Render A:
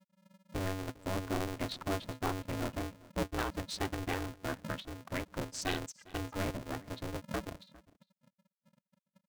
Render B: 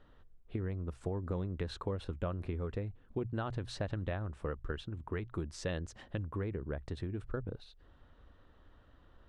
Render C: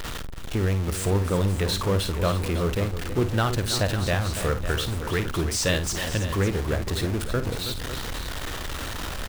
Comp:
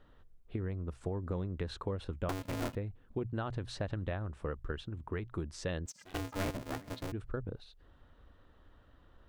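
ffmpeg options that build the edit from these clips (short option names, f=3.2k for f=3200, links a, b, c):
-filter_complex "[0:a]asplit=2[a][b];[1:a]asplit=3[c][d][e];[c]atrim=end=2.292[f];[a]atrim=start=2.288:end=2.752[g];[d]atrim=start=2.748:end=5.862[h];[b]atrim=start=5.858:end=7.122[i];[e]atrim=start=7.118[j];[f][g]acrossfade=d=0.004:c1=hsin:c2=hsin[k];[k][h]acrossfade=d=0.004:c1=hsin:c2=hsin[l];[l][i]acrossfade=d=0.004:c1=hsin:c2=hsin[m];[m][j]acrossfade=d=0.004:c1=hsin:c2=hsin"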